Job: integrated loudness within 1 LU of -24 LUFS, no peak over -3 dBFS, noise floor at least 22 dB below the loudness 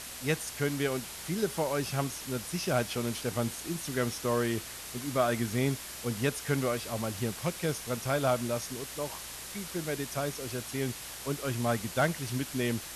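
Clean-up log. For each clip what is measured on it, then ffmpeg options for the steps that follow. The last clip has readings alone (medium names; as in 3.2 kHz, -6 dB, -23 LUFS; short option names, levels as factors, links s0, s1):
hum 60 Hz; highest harmonic 240 Hz; hum level -51 dBFS; noise floor -43 dBFS; noise floor target -55 dBFS; loudness -32.5 LUFS; peak level -15.0 dBFS; loudness target -24.0 LUFS
-> -af "bandreject=f=60:t=h:w=4,bandreject=f=120:t=h:w=4,bandreject=f=180:t=h:w=4,bandreject=f=240:t=h:w=4"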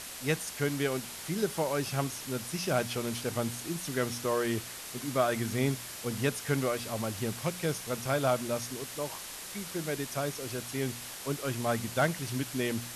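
hum not found; noise floor -43 dBFS; noise floor target -55 dBFS
-> -af "afftdn=nr=12:nf=-43"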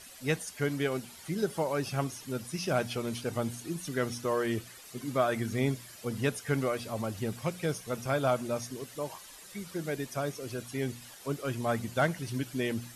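noise floor -50 dBFS; noise floor target -55 dBFS
-> -af "afftdn=nr=6:nf=-50"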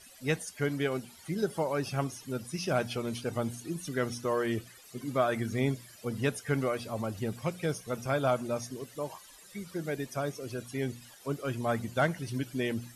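noise floor -54 dBFS; noise floor target -56 dBFS
-> -af "afftdn=nr=6:nf=-54"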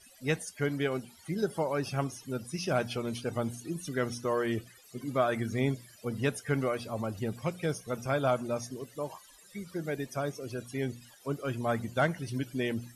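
noise floor -57 dBFS; loudness -33.5 LUFS; peak level -15.5 dBFS; loudness target -24.0 LUFS
-> -af "volume=2.99"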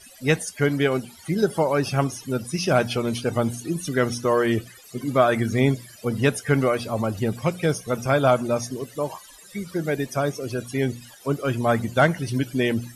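loudness -24.0 LUFS; peak level -6.0 dBFS; noise floor -47 dBFS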